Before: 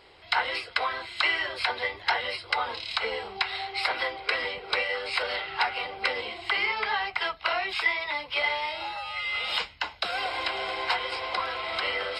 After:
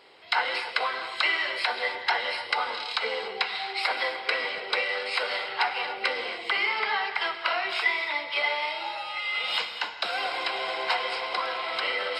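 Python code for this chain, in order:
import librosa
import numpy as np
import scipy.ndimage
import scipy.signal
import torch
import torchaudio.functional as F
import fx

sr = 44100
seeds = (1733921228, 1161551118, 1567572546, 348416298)

y = scipy.signal.sosfilt(scipy.signal.butter(2, 210.0, 'highpass', fs=sr, output='sos'), x)
y = fx.rev_gated(y, sr, seeds[0], gate_ms=320, shape='flat', drr_db=6.5)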